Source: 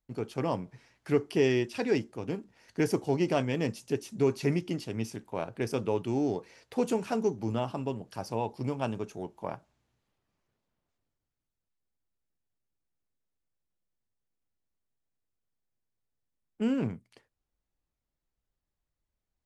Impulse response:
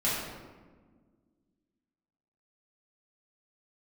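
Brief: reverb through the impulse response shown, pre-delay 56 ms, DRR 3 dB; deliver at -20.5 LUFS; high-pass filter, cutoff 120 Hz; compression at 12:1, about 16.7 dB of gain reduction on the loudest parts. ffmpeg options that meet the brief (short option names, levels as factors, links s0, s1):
-filter_complex "[0:a]highpass=120,acompressor=threshold=0.0126:ratio=12,asplit=2[s0][s1];[1:a]atrim=start_sample=2205,adelay=56[s2];[s1][s2]afir=irnorm=-1:irlink=0,volume=0.224[s3];[s0][s3]amix=inputs=2:normalize=0,volume=11.9"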